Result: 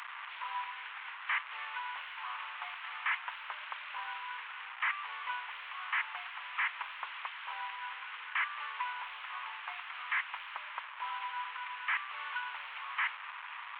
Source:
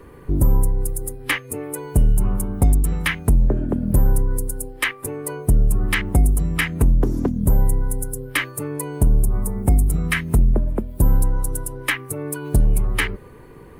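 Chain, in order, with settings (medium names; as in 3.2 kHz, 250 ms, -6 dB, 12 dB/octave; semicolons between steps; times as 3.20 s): one-bit delta coder 16 kbps, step -33 dBFS; elliptic high-pass 980 Hz, stop band 70 dB; trim +1.5 dB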